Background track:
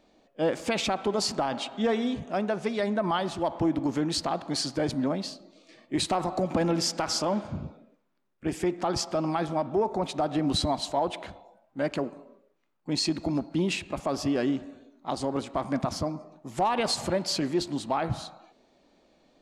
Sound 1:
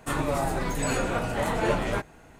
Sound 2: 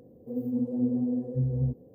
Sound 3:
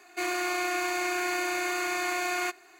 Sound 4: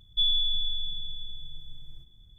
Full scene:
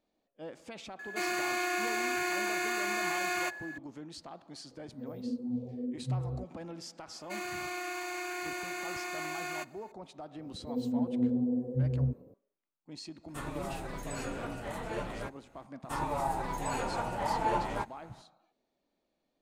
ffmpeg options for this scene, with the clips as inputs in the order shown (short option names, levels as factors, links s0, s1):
-filter_complex "[3:a]asplit=2[s0][s1];[2:a]asplit=2[s2][s3];[1:a]asplit=2[s4][s5];[0:a]volume=0.126[s6];[s0]aeval=exprs='val(0)+0.0112*sin(2*PI*1700*n/s)':c=same[s7];[s2]asplit=2[s8][s9];[s9]afreqshift=-1.8[s10];[s8][s10]amix=inputs=2:normalize=1[s11];[s5]equalizer=f=890:w=3.5:g=14[s12];[s7]atrim=end=2.79,asetpts=PTS-STARTPTS,volume=0.708,afade=t=in:d=0.004:c=hsin,afade=t=out:st=2.786:d=0.004:c=hsin,adelay=990[s13];[s11]atrim=end=1.94,asetpts=PTS-STARTPTS,volume=0.562,afade=t=in:d=0.004:c=hsin,afade=t=out:st=1.936:d=0.004:c=hsin,adelay=4710[s14];[s1]atrim=end=2.79,asetpts=PTS-STARTPTS,volume=0.376,afade=t=in:d=0.004:c=hsin,afade=t=out:st=2.786:d=0.004:c=hsin,adelay=7130[s15];[s3]atrim=end=1.94,asetpts=PTS-STARTPTS,volume=0.794,afade=t=in:d=0.004:c=hsin,afade=t=out:st=1.936:d=0.004:c=hsin,adelay=10400[s16];[s4]atrim=end=2.39,asetpts=PTS-STARTPTS,volume=0.251,afade=t=in:d=0.004:c=hsin,afade=t=out:st=2.386:d=0.004:c=hsin,adelay=13280[s17];[s12]atrim=end=2.39,asetpts=PTS-STARTPTS,volume=0.316,afade=t=in:d=0.004:c=hsin,afade=t=out:st=2.386:d=0.004:c=hsin,adelay=15830[s18];[s6][s13][s14][s15][s16][s17][s18]amix=inputs=7:normalize=0"